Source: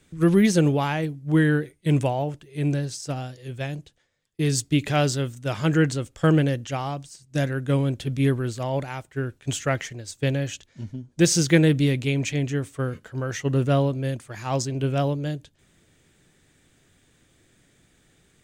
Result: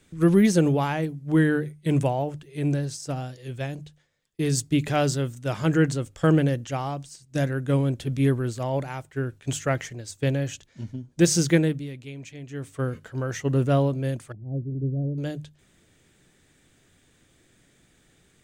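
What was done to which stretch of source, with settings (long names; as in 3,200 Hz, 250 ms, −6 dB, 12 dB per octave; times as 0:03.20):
0:11.48–0:12.83: duck −14.5 dB, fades 0.36 s
0:14.32–0:15.18: Gaussian smoothing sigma 23 samples
whole clip: dynamic equaliser 3,200 Hz, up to −4 dB, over −43 dBFS, Q 0.72; mains-hum notches 50/100/150 Hz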